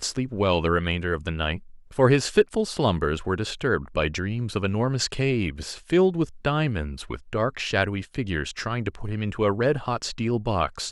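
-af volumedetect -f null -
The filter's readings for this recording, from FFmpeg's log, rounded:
mean_volume: -24.8 dB
max_volume: -5.0 dB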